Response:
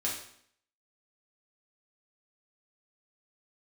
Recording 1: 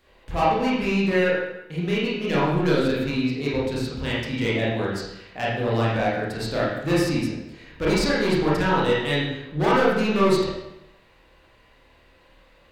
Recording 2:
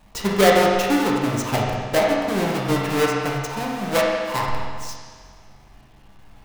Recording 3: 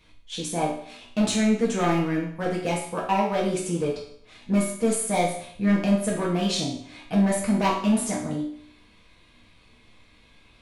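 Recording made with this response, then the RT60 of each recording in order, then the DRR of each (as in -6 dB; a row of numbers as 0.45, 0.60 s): 3; 0.90, 1.8, 0.65 s; -7.5, -3.5, -5.0 dB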